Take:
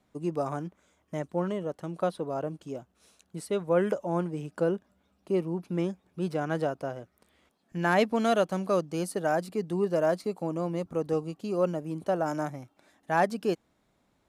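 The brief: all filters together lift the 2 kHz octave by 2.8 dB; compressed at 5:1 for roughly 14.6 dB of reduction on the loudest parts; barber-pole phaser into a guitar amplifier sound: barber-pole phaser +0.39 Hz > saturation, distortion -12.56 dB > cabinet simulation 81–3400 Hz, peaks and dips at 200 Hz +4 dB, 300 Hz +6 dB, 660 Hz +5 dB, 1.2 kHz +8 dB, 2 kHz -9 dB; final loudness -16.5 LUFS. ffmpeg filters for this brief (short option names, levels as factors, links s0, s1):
-filter_complex "[0:a]equalizer=f=2000:t=o:g=5.5,acompressor=threshold=0.0178:ratio=5,asplit=2[s0][s1];[s1]afreqshift=0.39[s2];[s0][s2]amix=inputs=2:normalize=1,asoftclip=threshold=0.0126,highpass=81,equalizer=f=200:t=q:w=4:g=4,equalizer=f=300:t=q:w=4:g=6,equalizer=f=660:t=q:w=4:g=5,equalizer=f=1200:t=q:w=4:g=8,equalizer=f=2000:t=q:w=4:g=-9,lowpass=f=3400:w=0.5412,lowpass=f=3400:w=1.3066,volume=22.4"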